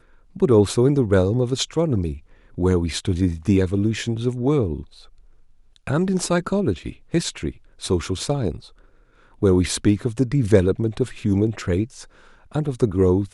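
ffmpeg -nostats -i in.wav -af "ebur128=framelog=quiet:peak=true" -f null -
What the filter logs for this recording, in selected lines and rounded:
Integrated loudness:
  I:         -21.5 LUFS
  Threshold: -32.3 LUFS
Loudness range:
  LRA:         4.3 LU
  Threshold: -42.7 LUFS
  LRA low:   -25.0 LUFS
  LRA high:  -20.7 LUFS
True peak:
  Peak:       -2.0 dBFS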